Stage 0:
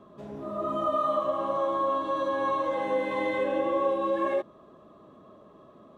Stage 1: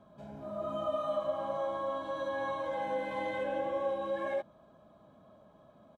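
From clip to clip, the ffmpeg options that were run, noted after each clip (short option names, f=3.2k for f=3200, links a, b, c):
-af "aecho=1:1:1.3:0.66,volume=-6.5dB"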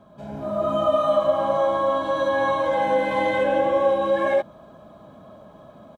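-af "dynaudnorm=f=170:g=3:m=6dB,volume=7.5dB"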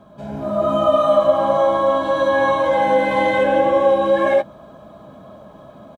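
-filter_complex "[0:a]asplit=2[a][b];[b]adelay=15,volume=-13.5dB[c];[a][c]amix=inputs=2:normalize=0,volume=4.5dB"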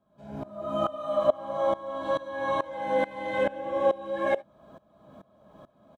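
-af "aeval=exprs='val(0)*pow(10,-21*if(lt(mod(-2.3*n/s,1),2*abs(-2.3)/1000),1-mod(-2.3*n/s,1)/(2*abs(-2.3)/1000),(mod(-2.3*n/s,1)-2*abs(-2.3)/1000)/(1-2*abs(-2.3)/1000))/20)':c=same,volume=-5.5dB"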